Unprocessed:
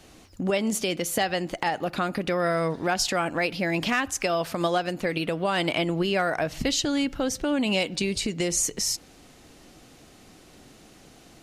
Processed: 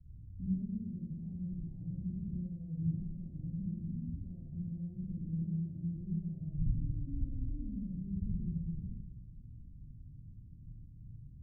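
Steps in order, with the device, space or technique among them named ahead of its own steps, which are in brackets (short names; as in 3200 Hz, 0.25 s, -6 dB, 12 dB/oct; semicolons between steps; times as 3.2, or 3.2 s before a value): club heard from the street (limiter -22 dBFS, peak gain reduction 9.5 dB; LPF 130 Hz 24 dB/oct; reverb RT60 1.2 s, pre-delay 48 ms, DRR -5.5 dB); gain +2 dB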